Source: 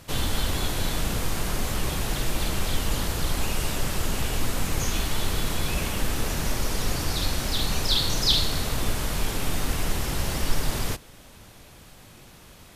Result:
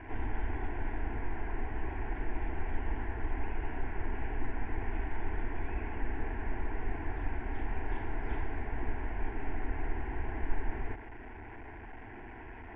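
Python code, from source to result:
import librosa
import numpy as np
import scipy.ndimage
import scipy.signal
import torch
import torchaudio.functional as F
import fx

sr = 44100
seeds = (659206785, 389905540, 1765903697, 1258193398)

y = fx.delta_mod(x, sr, bps=32000, step_db=-29.0)
y = scipy.signal.sosfilt(scipy.signal.butter(4, 1900.0, 'lowpass', fs=sr, output='sos'), y)
y = fx.fixed_phaser(y, sr, hz=820.0, stages=8)
y = F.gain(torch.from_numpy(y), -6.0).numpy()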